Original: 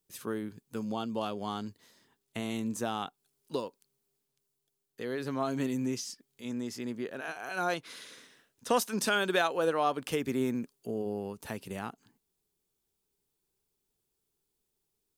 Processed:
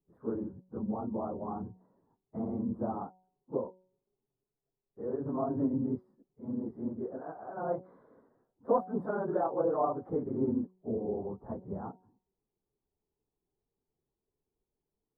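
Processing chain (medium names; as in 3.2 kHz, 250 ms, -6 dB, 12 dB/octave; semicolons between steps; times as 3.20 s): phase randomisation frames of 50 ms; inverse Chebyshev low-pass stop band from 2.5 kHz, stop band 50 dB; de-hum 185.3 Hz, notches 5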